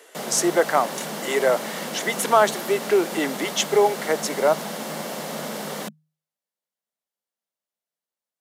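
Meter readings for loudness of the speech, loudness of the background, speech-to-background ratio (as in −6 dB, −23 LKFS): −22.5 LKFS, −31.0 LKFS, 8.5 dB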